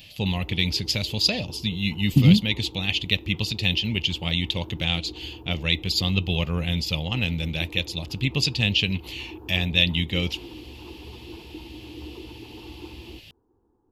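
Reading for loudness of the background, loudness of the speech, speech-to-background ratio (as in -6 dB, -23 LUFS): -43.0 LUFS, -24.0 LUFS, 19.0 dB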